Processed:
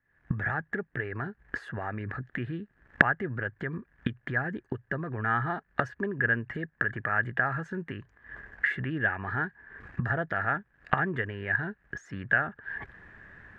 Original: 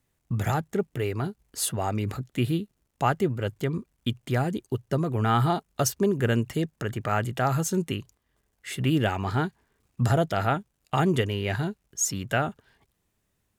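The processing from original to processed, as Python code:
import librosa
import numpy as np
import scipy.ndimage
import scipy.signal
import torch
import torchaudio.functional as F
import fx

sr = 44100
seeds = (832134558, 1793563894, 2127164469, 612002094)

y = fx.recorder_agc(x, sr, target_db=-18.5, rise_db_per_s=77.0, max_gain_db=30)
y = fx.lowpass_res(y, sr, hz=1700.0, q=13.0)
y = y * librosa.db_to_amplitude(-10.0)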